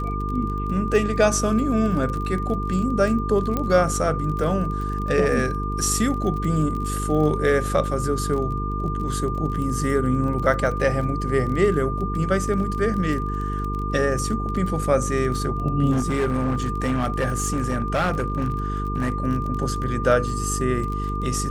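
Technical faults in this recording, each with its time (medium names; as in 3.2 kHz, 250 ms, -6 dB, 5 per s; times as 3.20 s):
buzz 50 Hz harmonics 9 -27 dBFS
crackle 27 per s -29 dBFS
whine 1.2 kHz -29 dBFS
3.57 s: pop -11 dBFS
15.91–19.16 s: clipped -17.5 dBFS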